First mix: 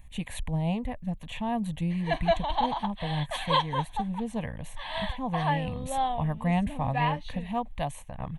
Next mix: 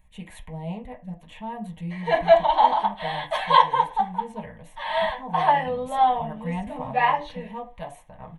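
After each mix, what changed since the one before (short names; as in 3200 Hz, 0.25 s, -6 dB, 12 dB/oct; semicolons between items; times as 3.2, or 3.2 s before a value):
speech -8.5 dB; reverb: on, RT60 0.30 s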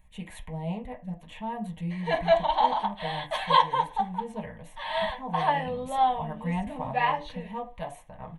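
background: send -6.5 dB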